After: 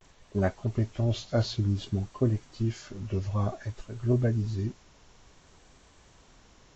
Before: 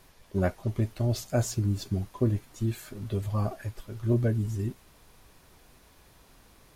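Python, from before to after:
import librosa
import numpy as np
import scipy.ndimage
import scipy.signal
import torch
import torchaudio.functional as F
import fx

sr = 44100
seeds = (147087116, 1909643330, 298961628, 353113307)

y = fx.freq_compress(x, sr, knee_hz=1900.0, ratio=1.5)
y = fx.vibrato(y, sr, rate_hz=0.56, depth_cents=65.0)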